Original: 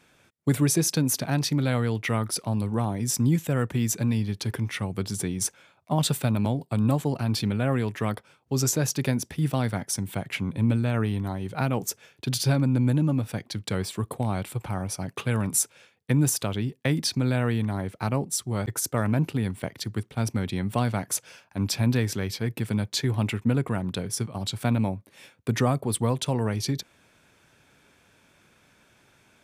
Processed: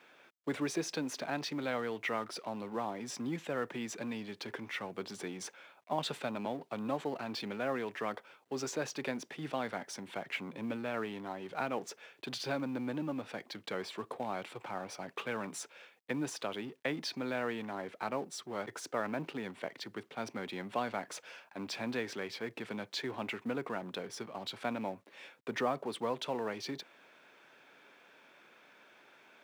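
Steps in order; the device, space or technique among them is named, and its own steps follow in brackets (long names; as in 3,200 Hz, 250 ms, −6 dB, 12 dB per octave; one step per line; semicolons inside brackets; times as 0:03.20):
phone line with mismatched companding (band-pass filter 370–3,400 Hz; mu-law and A-law mismatch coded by mu)
high-pass filter 120 Hz
level −6 dB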